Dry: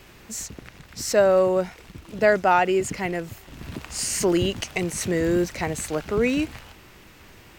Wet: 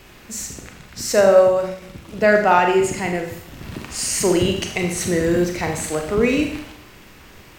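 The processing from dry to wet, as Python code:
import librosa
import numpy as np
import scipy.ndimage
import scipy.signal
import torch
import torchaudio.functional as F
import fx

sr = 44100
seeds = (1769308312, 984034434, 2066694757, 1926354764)

y = fx.rev_schroeder(x, sr, rt60_s=0.7, comb_ms=30, drr_db=3.0)
y = fx.band_widen(y, sr, depth_pct=40, at=(1.35, 1.82))
y = y * 10.0 ** (2.5 / 20.0)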